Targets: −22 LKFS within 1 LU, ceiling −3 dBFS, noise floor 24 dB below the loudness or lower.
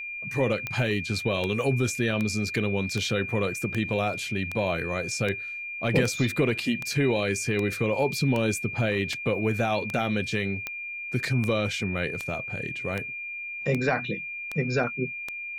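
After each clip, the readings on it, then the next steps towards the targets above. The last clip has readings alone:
number of clicks 20; interfering tone 2,400 Hz; level of the tone −33 dBFS; integrated loudness −27.0 LKFS; sample peak −9.5 dBFS; target loudness −22.0 LKFS
→ click removal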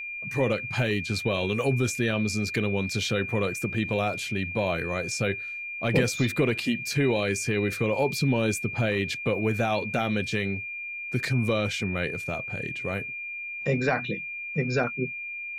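number of clicks 0; interfering tone 2,400 Hz; level of the tone −33 dBFS
→ notch filter 2,400 Hz, Q 30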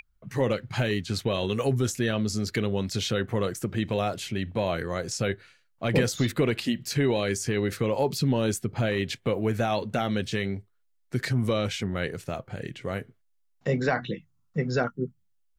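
interfering tone none found; integrated loudness −28.0 LKFS; sample peak −10.5 dBFS; target loudness −22.0 LKFS
→ level +6 dB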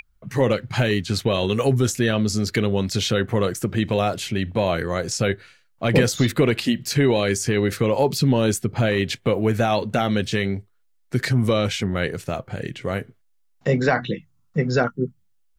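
integrated loudness −22.0 LKFS; sample peak −4.5 dBFS; background noise floor −62 dBFS

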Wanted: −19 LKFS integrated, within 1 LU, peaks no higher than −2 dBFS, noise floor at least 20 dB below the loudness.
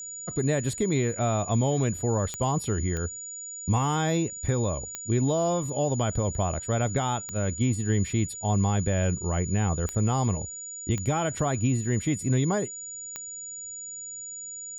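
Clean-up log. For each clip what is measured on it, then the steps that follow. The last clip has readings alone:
number of clicks 7; interfering tone 6,900 Hz; level of the tone −36 dBFS; integrated loudness −27.5 LKFS; sample peak −13.0 dBFS; target loudness −19.0 LKFS
→ click removal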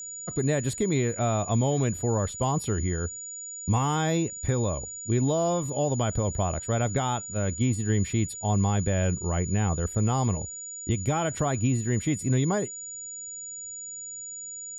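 number of clicks 0; interfering tone 6,900 Hz; level of the tone −36 dBFS
→ notch filter 6,900 Hz, Q 30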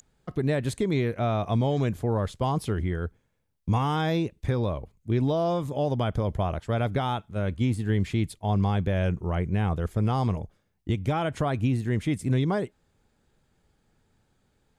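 interfering tone none found; integrated loudness −27.5 LKFS; sample peak −13.5 dBFS; target loudness −19.0 LKFS
→ level +8.5 dB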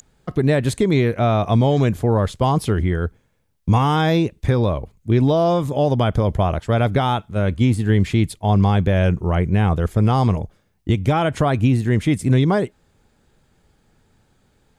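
integrated loudness −19.0 LKFS; sample peak −5.0 dBFS; background noise floor −63 dBFS

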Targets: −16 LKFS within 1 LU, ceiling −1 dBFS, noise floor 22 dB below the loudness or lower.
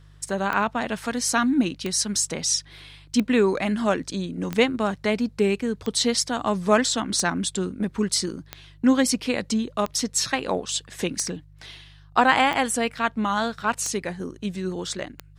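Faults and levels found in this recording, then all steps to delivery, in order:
number of clicks 12; mains hum 50 Hz; hum harmonics up to 150 Hz; level of the hum −48 dBFS; integrated loudness −24.0 LKFS; sample peak −4.5 dBFS; target loudness −16.0 LKFS
→ click removal
hum removal 50 Hz, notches 3
level +8 dB
brickwall limiter −1 dBFS

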